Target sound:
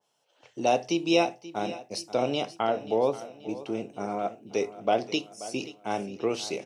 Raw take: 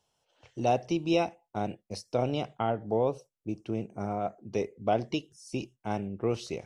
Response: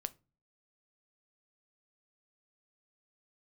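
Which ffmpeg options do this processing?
-filter_complex "[0:a]highpass=230,aecho=1:1:532|1064|1596|2128|2660:0.158|0.0808|0.0412|0.021|0.0107[link_01];[1:a]atrim=start_sample=2205,afade=type=out:start_time=0.15:duration=0.01,atrim=end_sample=7056[link_02];[link_01][link_02]afir=irnorm=-1:irlink=0,adynamicequalizer=threshold=0.00316:dfrequency=2200:dqfactor=0.7:tfrequency=2200:tqfactor=0.7:attack=5:release=100:ratio=0.375:range=3:mode=boostabove:tftype=highshelf,volume=4.5dB"

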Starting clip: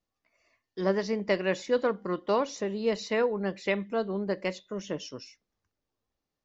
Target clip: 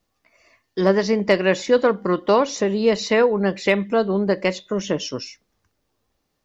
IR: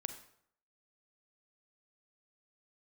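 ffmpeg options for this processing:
-filter_complex "[0:a]asplit=2[link_01][link_02];[link_02]acompressor=threshold=-33dB:ratio=8,volume=-1dB[link_03];[link_01][link_03]amix=inputs=2:normalize=0,asoftclip=type=hard:threshold=-12.5dB,volume=7.5dB"

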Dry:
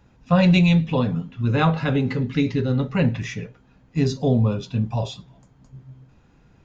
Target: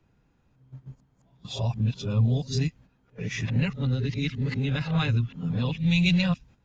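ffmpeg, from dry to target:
ffmpeg -i in.wav -filter_complex "[0:a]areverse,agate=range=-11dB:threshold=-42dB:ratio=16:detection=peak,acrossover=split=150|2000[link_01][link_02][link_03];[link_02]acompressor=threshold=-33dB:ratio=6[link_04];[link_01][link_04][link_03]amix=inputs=3:normalize=0" out.wav

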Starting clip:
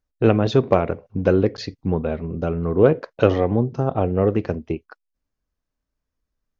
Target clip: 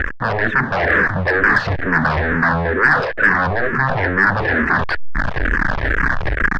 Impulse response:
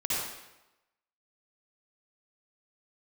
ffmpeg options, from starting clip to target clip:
-filter_complex "[0:a]aeval=exprs='val(0)+0.5*0.0447*sgn(val(0))':channel_layout=same,areverse,acompressor=threshold=-30dB:ratio=8,areverse,aeval=exprs='0.0944*sin(PI/2*5.01*val(0)/0.0944)':channel_layout=same,lowpass=frequency=1700:width_type=q:width=7.7,asplit=2[link_01][link_02];[link_02]acontrast=82,volume=2dB[link_03];[link_01][link_03]amix=inputs=2:normalize=0,asplit=2[link_04][link_05];[link_05]afreqshift=-2.2[link_06];[link_04][link_06]amix=inputs=2:normalize=1,volume=-5.5dB"

